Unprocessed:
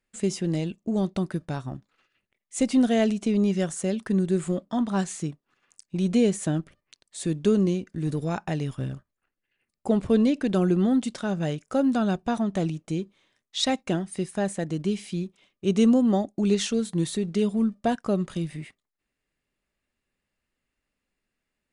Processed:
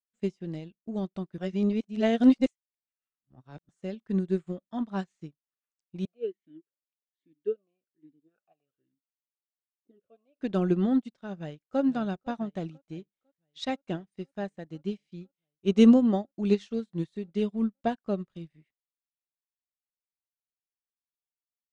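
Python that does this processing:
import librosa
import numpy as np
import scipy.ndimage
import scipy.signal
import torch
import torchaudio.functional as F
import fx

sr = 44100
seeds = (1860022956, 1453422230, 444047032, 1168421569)

y = fx.vowel_sweep(x, sr, vowels='a-i', hz=1.2, at=(6.05, 10.4))
y = fx.echo_throw(y, sr, start_s=11.38, length_s=0.43, ms=500, feedback_pct=80, wet_db=-14.5)
y = fx.edit(y, sr, fx.reverse_span(start_s=1.38, length_s=2.31), tone=tone)
y = scipy.signal.sosfilt(scipy.signal.butter(2, 4800.0, 'lowpass', fs=sr, output='sos'), y)
y = fx.upward_expand(y, sr, threshold_db=-41.0, expansion=2.5)
y = y * librosa.db_to_amplitude(3.5)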